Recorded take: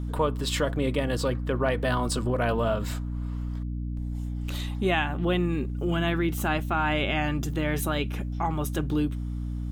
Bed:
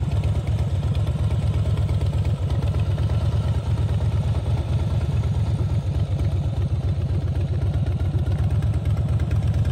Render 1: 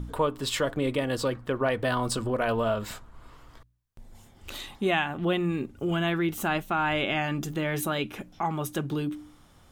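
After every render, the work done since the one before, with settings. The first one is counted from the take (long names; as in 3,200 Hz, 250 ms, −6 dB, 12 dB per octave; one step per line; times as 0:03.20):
hum removal 60 Hz, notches 5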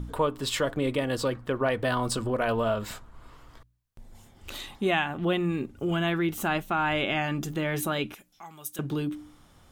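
0:08.14–0:08.79: first-order pre-emphasis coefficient 0.9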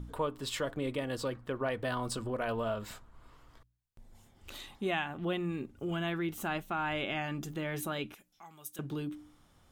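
level −7.5 dB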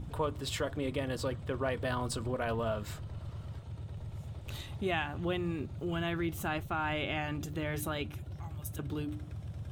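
mix in bed −21 dB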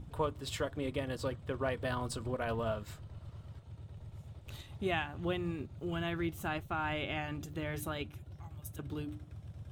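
expander for the loud parts 1.5 to 1, over −46 dBFS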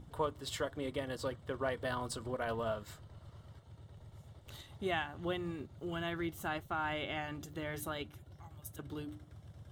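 low-shelf EQ 230 Hz −7 dB
notch filter 2,500 Hz, Q 6.6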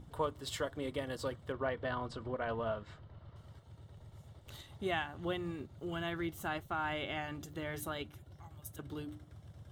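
0:01.52–0:03.36: low-pass filter 3,200 Hz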